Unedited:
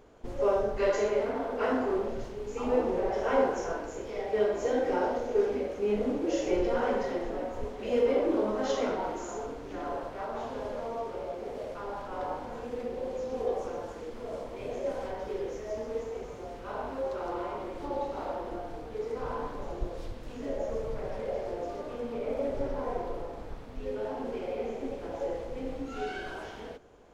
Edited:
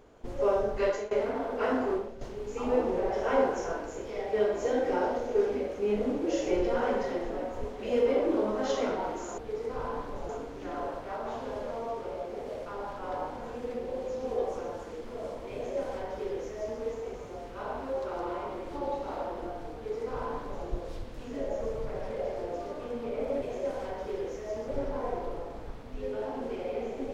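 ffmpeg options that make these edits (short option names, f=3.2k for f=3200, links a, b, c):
-filter_complex "[0:a]asplit=7[a][b][c][d][e][f][g];[a]atrim=end=1.11,asetpts=PTS-STARTPTS,afade=t=out:st=0.84:d=0.27:silence=0.133352[h];[b]atrim=start=1.11:end=2.21,asetpts=PTS-STARTPTS,afade=t=in:d=0.004:c=hsin:silence=0.133352,afade=t=out:st=0.82:d=0.28:c=qua:silence=0.298538[i];[c]atrim=start=2.21:end=9.382,asetpts=PTS-STARTPTS,afade=t=in:d=0.004:c=hsin:silence=0.298538[j];[d]atrim=start=18.838:end=19.752[k];[e]atrim=start=9.378:end=22.512[l];[f]atrim=start=14.628:end=15.892[m];[g]atrim=start=22.508[n];[h][i][j]concat=n=3:v=0:a=1[o];[o][k]acrossfade=d=0.004:c1=hsin:c2=hsin[p];[p][l]acrossfade=d=0.004:c1=hsin:c2=hsin[q];[q][m]acrossfade=d=0.004:c1=hsin:c2=hsin[r];[r][n]acrossfade=d=0.004:c1=hsin:c2=hsin"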